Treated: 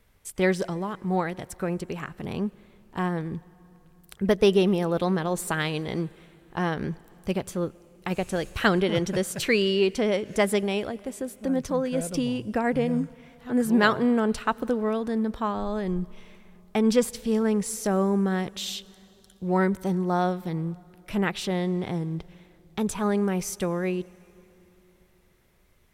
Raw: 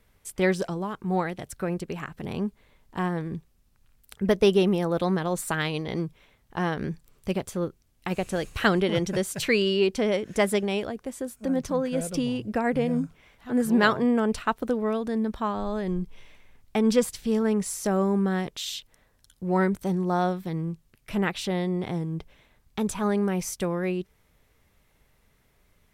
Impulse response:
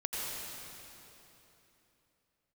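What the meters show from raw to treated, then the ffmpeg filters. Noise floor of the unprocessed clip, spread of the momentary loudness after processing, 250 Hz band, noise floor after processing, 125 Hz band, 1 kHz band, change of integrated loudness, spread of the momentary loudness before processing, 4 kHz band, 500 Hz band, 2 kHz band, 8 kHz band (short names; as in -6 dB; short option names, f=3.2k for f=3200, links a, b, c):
-65 dBFS, 12 LU, +0.5 dB, -59 dBFS, +0.5 dB, +0.5 dB, +0.5 dB, 12 LU, +0.5 dB, +0.5 dB, +0.5 dB, +0.5 dB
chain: -filter_complex "[0:a]asplit=2[a][b];[1:a]atrim=start_sample=2205[c];[b][c]afir=irnorm=-1:irlink=0,volume=-26dB[d];[a][d]amix=inputs=2:normalize=0"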